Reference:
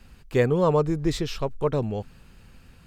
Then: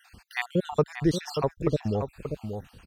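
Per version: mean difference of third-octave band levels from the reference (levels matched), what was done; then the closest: 9.5 dB: random spectral dropouts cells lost 54%; HPF 41 Hz 12 dB/oct; in parallel at -2 dB: compressor, threshold -34 dBFS, peak gain reduction 15 dB; on the sum: outdoor echo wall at 100 m, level -7 dB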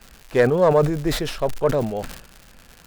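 5.5 dB: tracing distortion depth 0.083 ms; fifteen-band EQ 100 Hz -7 dB, 630 Hz +9 dB, 1600 Hz +6 dB; crackle 190/s -32 dBFS; sustainer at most 79 dB/s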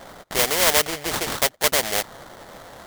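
15.0 dB: in parallel at 0 dB: limiter -17 dBFS, peak gain reduction 7.5 dB; on the sum: resonant high-pass 630 Hz, resonance Q 4.9; sample-rate reducer 2600 Hz, jitter 20%; spectral compressor 2:1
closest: second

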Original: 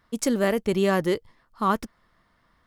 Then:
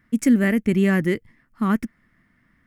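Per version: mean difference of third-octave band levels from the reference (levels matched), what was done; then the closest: 5.5 dB: graphic EQ 125/250/500/1000/2000/4000 Hz +5/+10/-6/-9/+11/-11 dB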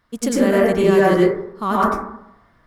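8.0 dB: plate-style reverb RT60 0.77 s, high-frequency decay 0.25×, pre-delay 85 ms, DRR -6.5 dB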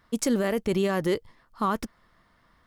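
2.0 dB: limiter -17.5 dBFS, peak gain reduction 8.5 dB; gain +2 dB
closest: third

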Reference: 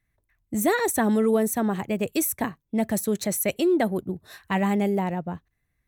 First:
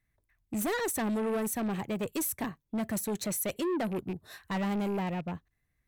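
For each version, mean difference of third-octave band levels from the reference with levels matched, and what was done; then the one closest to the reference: 4.0 dB: rattling part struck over -30 dBFS, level -34 dBFS; soft clip -24.5 dBFS, distortion -10 dB; gain -3 dB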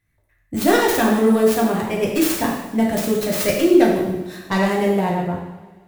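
8.5 dB: tracing distortion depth 0.39 ms; two-slope reverb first 0.88 s, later 2.5 s, from -19 dB, DRR -3 dB; gain +2 dB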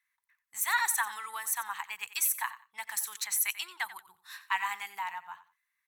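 14.5 dB: elliptic high-pass 930 Hz, stop band 40 dB; on a send: feedback echo 90 ms, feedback 21%, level -15 dB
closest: first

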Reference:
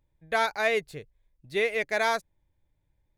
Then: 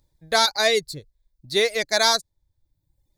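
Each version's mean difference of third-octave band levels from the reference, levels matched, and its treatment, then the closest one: 4.5 dB: resonant high shelf 3400 Hz +7 dB, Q 3; in parallel at -8 dB: overloaded stage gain 17 dB; on the sum: reverb removal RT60 0.93 s; dynamic EQ 5400 Hz, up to +4 dB, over -36 dBFS, Q 0.71; gain +3 dB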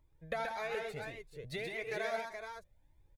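8.5 dB: bell 540 Hz +4 dB 1.9 oct; compressor 16:1, threshold -35 dBFS, peak gain reduction 18 dB; on a send: tapped delay 76/128/186/388/424 ms -13.5/-4/-14.5/-16.5/-6.5 dB; on the sum: cascading flanger rising 1.7 Hz; gain +4 dB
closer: first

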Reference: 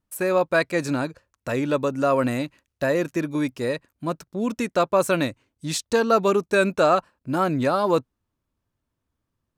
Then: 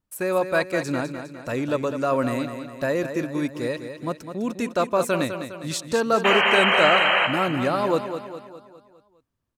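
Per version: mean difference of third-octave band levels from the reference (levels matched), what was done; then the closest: 4.5 dB: painted sound noise, 6.24–7.27, 490–3200 Hz -18 dBFS; on a send: feedback echo 0.204 s, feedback 50%, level -9 dB; on the sum: gain -2 dB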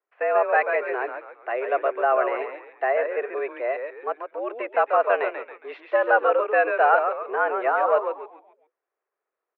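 14.0 dB: on a send: frequency-shifting echo 0.137 s, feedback 42%, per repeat -100 Hz, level -6 dB; on the sum: mistuned SSB +120 Hz 320–2300 Hz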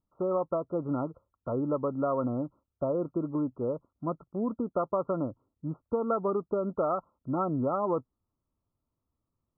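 10.5 dB: compressor, threshold -20 dBFS, peak gain reduction 7.5 dB; brick-wall FIR low-pass 1400 Hz; gain -4.5 dB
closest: first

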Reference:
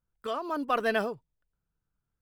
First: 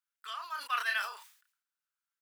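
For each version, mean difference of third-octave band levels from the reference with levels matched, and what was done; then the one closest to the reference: 14.0 dB: HPF 1300 Hz 24 dB/oct; doubler 31 ms -8 dB; sustainer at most 96 dB/s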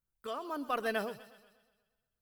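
4.5 dB: high shelf 8900 Hz +11 dB; on a send: thin delay 0.129 s, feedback 54%, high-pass 3500 Hz, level -9.5 dB; on the sum: warbling echo 0.12 s, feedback 54%, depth 100 cents, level -18.5 dB; gain -6.5 dB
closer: second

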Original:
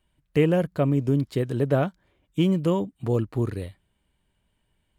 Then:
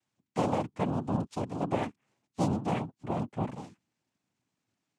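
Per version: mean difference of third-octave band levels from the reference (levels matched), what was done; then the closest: 8.5 dB: noise vocoder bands 4; gain -8 dB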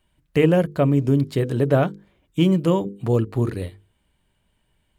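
1.5 dB: notches 50/100/150/200/250/300/350/400/450/500 Hz; gain +4.5 dB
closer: second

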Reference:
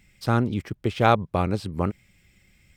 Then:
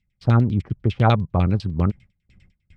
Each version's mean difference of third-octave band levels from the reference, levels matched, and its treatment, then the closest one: 6.0 dB: gate with hold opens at -47 dBFS; tone controls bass +14 dB, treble +14 dB; LFO low-pass saw down 10 Hz 520–4200 Hz; gain -5 dB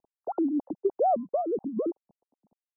17.5 dB: sine-wave speech; steep low-pass 860 Hz 48 dB/oct; compressor, threshold -20 dBFS, peak gain reduction 5.5 dB; gain -1 dB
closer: first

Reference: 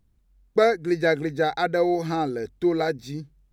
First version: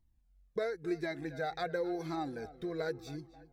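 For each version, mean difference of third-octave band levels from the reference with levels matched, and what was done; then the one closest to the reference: 4.0 dB: compressor, threshold -21 dBFS, peak gain reduction 7.5 dB; tape echo 0.268 s, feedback 49%, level -15 dB, low-pass 2800 Hz; cascading flanger falling 0.93 Hz; gain -5.5 dB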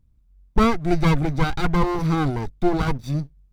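7.0 dB: minimum comb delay 0.84 ms; low shelf 240 Hz +12 dB; sample leveller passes 1; gain -3 dB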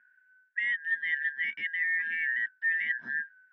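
18.0 dB: four-band scrambler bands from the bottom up 4123; reverse; compressor 6:1, threshold -30 dBFS, peak gain reduction 15.5 dB; reverse; speaker cabinet 210–2400 Hz, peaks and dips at 220 Hz +7 dB, 320 Hz -5 dB, 470 Hz -5 dB, 820 Hz -6 dB, 1200 Hz -8 dB, 1800 Hz +5 dB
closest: first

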